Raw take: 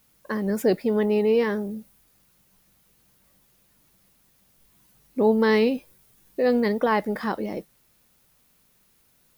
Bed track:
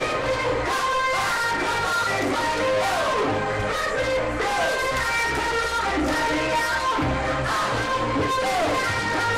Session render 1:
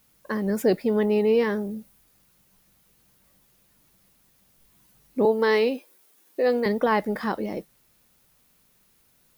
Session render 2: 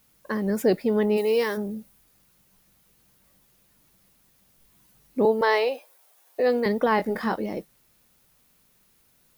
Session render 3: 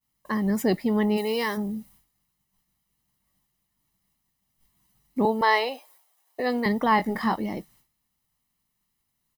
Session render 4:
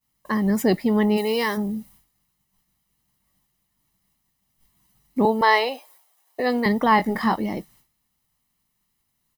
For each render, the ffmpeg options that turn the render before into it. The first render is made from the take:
-filter_complex "[0:a]asettb=1/sr,asplit=3[s0][s1][s2];[s0]atrim=end=5.254[s3];[s1]atrim=start=5.25:end=6.66,asetpts=PTS-STARTPTS,afade=t=in:d=0.004:c=qsin,afade=t=out:st=1.406:d=0.004:c=qsin,highpass=f=280:w=0.5412,highpass=f=280:w=1.3066[s4];[s2]atrim=start=6.656[s5];[s3][s4]acrossfade=d=0.004:c1=hsin:c2=qsin[s6];[s6][s5]acrossfade=d=0.004:c1=qsin:c2=hsin"
-filter_complex "[0:a]asplit=3[s0][s1][s2];[s0]afade=t=out:st=1.16:d=0.02[s3];[s1]bass=f=250:g=-14,treble=f=4000:g=12,afade=t=in:st=1.16:d=0.02,afade=t=out:st=1.56:d=0.02[s4];[s2]afade=t=in:st=1.56:d=0.02[s5];[s3][s4][s5]amix=inputs=3:normalize=0,asettb=1/sr,asplit=3[s6][s7][s8];[s6]atrim=end=5.414[s9];[s7]atrim=start=5.41:end=6.4,asetpts=PTS-STARTPTS,afade=t=in:d=0.004:c=qsin,afade=t=out:st=0.986:d=0.004:c=qsin,highpass=f=670:t=q:w=2.6[s10];[s8]atrim=start=6.396[s11];[s9][s10]acrossfade=d=0.004:c1=hsin:c2=qsin[s12];[s12][s11]acrossfade=d=0.004:c1=qsin:c2=hsin,asettb=1/sr,asplit=3[s13][s14][s15];[s13]atrim=end=6.964[s16];[s14]atrim=start=6.96:end=7.36,asetpts=PTS-STARTPTS,afade=t=in:d=0.004:c=qsin,afade=t=out:st=0.396:d=0.004:c=qsin,asplit=2[s17][s18];[s18]adelay=22,volume=0.447[s19];[s17][s19]amix=inputs=2:normalize=0,atrim=end_sample=17640[s20];[s15]atrim=start=7.356[s21];[s16][s20]acrossfade=d=0.004:c1=hsin:c2=qsin[s22];[s22][s21]acrossfade=d=0.004:c1=qsin:c2=hsin"
-af "agate=range=0.0224:threshold=0.00251:ratio=3:detection=peak,aecho=1:1:1:0.56"
-af "volume=1.5"

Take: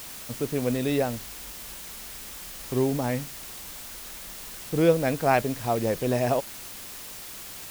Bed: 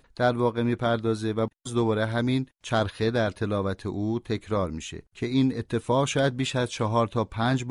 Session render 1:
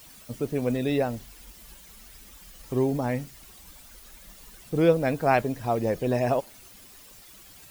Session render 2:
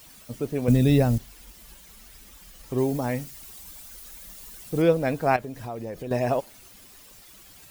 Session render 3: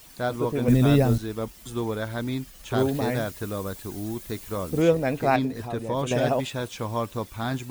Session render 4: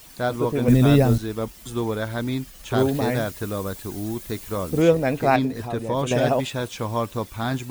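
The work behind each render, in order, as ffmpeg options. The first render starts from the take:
-af "afftdn=nr=12:nf=-41"
-filter_complex "[0:a]asettb=1/sr,asplit=3[s0][s1][s2];[s0]atrim=end=0.684[s3];[s1]atrim=start=0.68:end=1.18,asetpts=PTS-STARTPTS,afade=t=in:d=0.004:c=qsin,afade=t=out:st=0.496:d=0.004:c=qsin,bass=f=250:g=15,treble=f=4000:g=8[s4];[s2]atrim=start=1.176[s5];[s3][s4]acrossfade=d=0.004:c1=hsin:c2=qsin[s6];[s6][s5]acrossfade=d=0.004:c1=qsin:c2=hsin,asettb=1/sr,asplit=3[s7][s8][s9];[s7]atrim=end=2.784[s10];[s8]atrim=start=2.78:end=4.82,asetpts=PTS-STARTPTS,afade=t=in:d=0.004:c=qsin,afade=t=out:st=2.036:d=0.004:c=qsin,highshelf=f=5300:g=7.5[s11];[s9]atrim=start=4.816[s12];[s10][s11]acrossfade=d=0.004:c1=hsin:c2=qsin[s13];[s13][s12]acrossfade=d=0.004:c1=qsin:c2=hsin,asettb=1/sr,asplit=3[s14][s15][s16];[s14]atrim=end=5.364[s17];[s15]atrim=start=5.36:end=6.11,asetpts=PTS-STARTPTS,afade=t=in:d=0.004:c=qsin,afade=t=out:st=0.746:d=0.004:c=qsin,acompressor=threshold=0.0224:ratio=3:attack=3.2:release=140:knee=1:detection=peak[s18];[s16]atrim=start=6.106[s19];[s17][s18]acrossfade=d=0.004:c1=hsin:c2=qsin[s20];[s20][s19]acrossfade=d=0.004:c1=qsin:c2=hsin"
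-filter_complex "[1:a]volume=0.596[s0];[0:a][s0]amix=inputs=2:normalize=0"
-af "volume=1.41"

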